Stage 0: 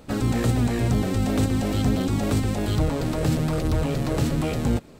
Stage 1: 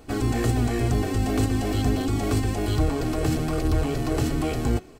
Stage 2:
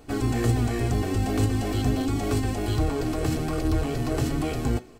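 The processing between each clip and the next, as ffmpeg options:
-af "bandreject=f=3700:w=18,aecho=1:1:2.7:0.53,bandreject=f=185.1:t=h:w=4,bandreject=f=370.2:t=h:w=4,bandreject=f=555.3:t=h:w=4,bandreject=f=740.4:t=h:w=4,bandreject=f=925.5:t=h:w=4,bandreject=f=1110.6:t=h:w=4,bandreject=f=1295.7:t=h:w=4,bandreject=f=1480.8:t=h:w=4,bandreject=f=1665.9:t=h:w=4,bandreject=f=1851:t=h:w=4,bandreject=f=2036.1:t=h:w=4,bandreject=f=2221.2:t=h:w=4,bandreject=f=2406.3:t=h:w=4,bandreject=f=2591.4:t=h:w=4,bandreject=f=2776.5:t=h:w=4,bandreject=f=2961.6:t=h:w=4,bandreject=f=3146.7:t=h:w=4,bandreject=f=3331.8:t=h:w=4,bandreject=f=3516.9:t=h:w=4,bandreject=f=3702:t=h:w=4,bandreject=f=3887.1:t=h:w=4,bandreject=f=4072.2:t=h:w=4,bandreject=f=4257.3:t=h:w=4,bandreject=f=4442.4:t=h:w=4,bandreject=f=4627.5:t=h:w=4,bandreject=f=4812.6:t=h:w=4,bandreject=f=4997.7:t=h:w=4,bandreject=f=5182.8:t=h:w=4,bandreject=f=5367.9:t=h:w=4,bandreject=f=5553:t=h:w=4,bandreject=f=5738.1:t=h:w=4,bandreject=f=5923.2:t=h:w=4,bandreject=f=6108.3:t=h:w=4,bandreject=f=6293.4:t=h:w=4,bandreject=f=6478.5:t=h:w=4,bandreject=f=6663.6:t=h:w=4,volume=0.891"
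-af "flanger=delay=6.8:depth=3.9:regen=78:speed=0.45:shape=triangular,volume=1.41"

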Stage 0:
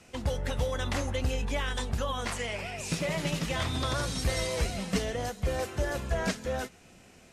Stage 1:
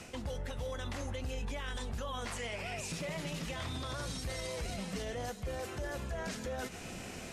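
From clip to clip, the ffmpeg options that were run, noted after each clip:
-af "areverse,acompressor=threshold=0.00891:ratio=4,areverse,alimiter=level_in=7.5:limit=0.0631:level=0:latency=1:release=99,volume=0.133,volume=3.55"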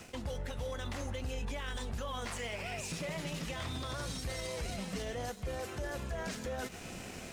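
-af "aeval=exprs='sgn(val(0))*max(abs(val(0))-0.00133,0)':c=same,volume=1.12"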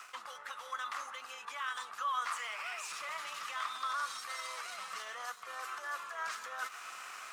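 -af "highpass=f=1200:t=q:w=7,volume=0.794"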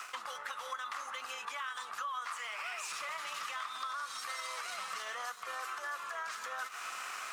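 -af "acompressor=threshold=0.00708:ratio=6,volume=2"

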